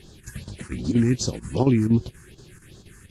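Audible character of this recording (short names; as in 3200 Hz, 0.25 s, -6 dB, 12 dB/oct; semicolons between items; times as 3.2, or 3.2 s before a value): a quantiser's noise floor 12-bit, dither triangular; phasing stages 4, 2.6 Hz, lowest notch 570–2200 Hz; chopped level 4.2 Hz, depth 60%, duty 85%; AAC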